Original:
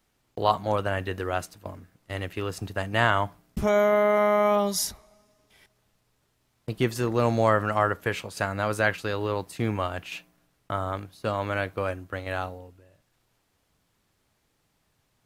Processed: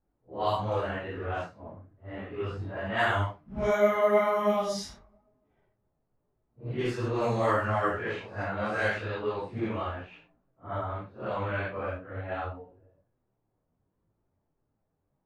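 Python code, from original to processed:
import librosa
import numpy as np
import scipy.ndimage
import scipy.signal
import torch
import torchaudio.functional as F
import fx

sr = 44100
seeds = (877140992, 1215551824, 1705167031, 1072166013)

y = fx.phase_scramble(x, sr, seeds[0], window_ms=200)
y = fx.env_lowpass(y, sr, base_hz=750.0, full_db=-18.0)
y = fx.detune_double(y, sr, cents=27)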